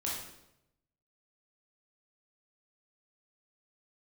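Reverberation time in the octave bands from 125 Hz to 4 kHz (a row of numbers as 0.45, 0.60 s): 1.2, 0.95, 0.90, 0.80, 0.75, 0.70 s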